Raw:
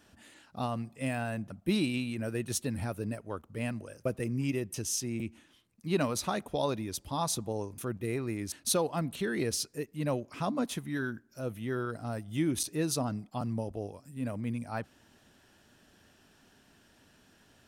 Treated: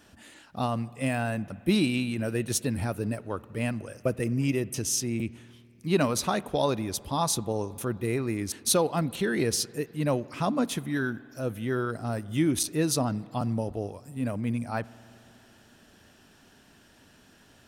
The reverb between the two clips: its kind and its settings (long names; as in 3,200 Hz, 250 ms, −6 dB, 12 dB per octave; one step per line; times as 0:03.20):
spring reverb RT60 3.1 s, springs 51 ms, chirp 50 ms, DRR 20 dB
level +5 dB